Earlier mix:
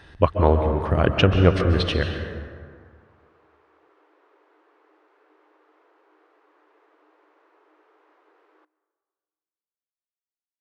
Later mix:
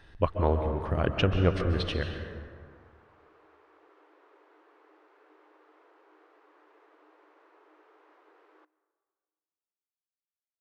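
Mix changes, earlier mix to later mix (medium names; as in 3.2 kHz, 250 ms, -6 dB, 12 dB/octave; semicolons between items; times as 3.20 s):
speech -8.0 dB; master: remove high-pass 45 Hz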